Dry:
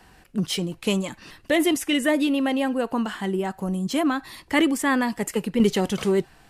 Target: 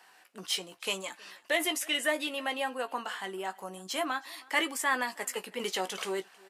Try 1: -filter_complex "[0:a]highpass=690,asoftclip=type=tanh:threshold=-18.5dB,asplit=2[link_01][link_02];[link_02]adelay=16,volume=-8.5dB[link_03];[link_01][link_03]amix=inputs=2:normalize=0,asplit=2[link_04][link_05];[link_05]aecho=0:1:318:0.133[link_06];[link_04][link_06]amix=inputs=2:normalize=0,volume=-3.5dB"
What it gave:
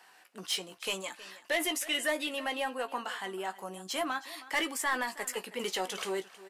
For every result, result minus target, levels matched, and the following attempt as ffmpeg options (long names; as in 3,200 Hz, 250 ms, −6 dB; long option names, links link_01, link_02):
soft clipping: distortion +17 dB; echo-to-direct +7 dB
-filter_complex "[0:a]highpass=690,asoftclip=type=tanh:threshold=-7dB,asplit=2[link_01][link_02];[link_02]adelay=16,volume=-8.5dB[link_03];[link_01][link_03]amix=inputs=2:normalize=0,asplit=2[link_04][link_05];[link_05]aecho=0:1:318:0.133[link_06];[link_04][link_06]amix=inputs=2:normalize=0,volume=-3.5dB"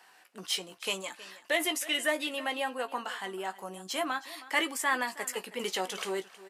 echo-to-direct +7 dB
-filter_complex "[0:a]highpass=690,asoftclip=type=tanh:threshold=-7dB,asplit=2[link_01][link_02];[link_02]adelay=16,volume=-8.5dB[link_03];[link_01][link_03]amix=inputs=2:normalize=0,asplit=2[link_04][link_05];[link_05]aecho=0:1:318:0.0596[link_06];[link_04][link_06]amix=inputs=2:normalize=0,volume=-3.5dB"